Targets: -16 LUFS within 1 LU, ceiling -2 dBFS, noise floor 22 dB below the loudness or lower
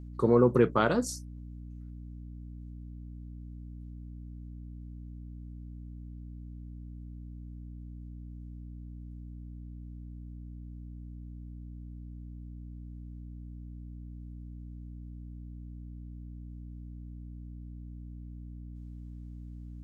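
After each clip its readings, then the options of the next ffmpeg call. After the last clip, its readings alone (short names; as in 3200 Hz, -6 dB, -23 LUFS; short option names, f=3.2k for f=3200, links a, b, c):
hum 60 Hz; harmonics up to 300 Hz; hum level -41 dBFS; loudness -37.5 LUFS; peak -10.5 dBFS; loudness target -16.0 LUFS
-> -af "bandreject=f=60:t=h:w=6,bandreject=f=120:t=h:w=6,bandreject=f=180:t=h:w=6,bandreject=f=240:t=h:w=6,bandreject=f=300:t=h:w=6"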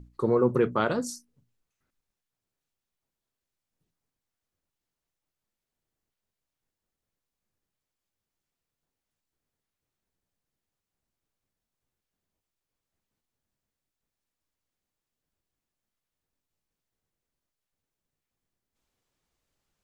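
hum none; loudness -25.5 LUFS; peak -10.5 dBFS; loudness target -16.0 LUFS
-> -af "volume=9.5dB,alimiter=limit=-2dB:level=0:latency=1"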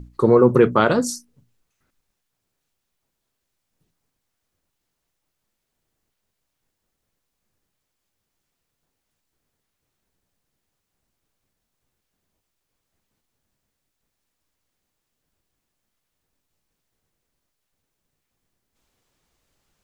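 loudness -16.5 LUFS; peak -2.0 dBFS; noise floor -79 dBFS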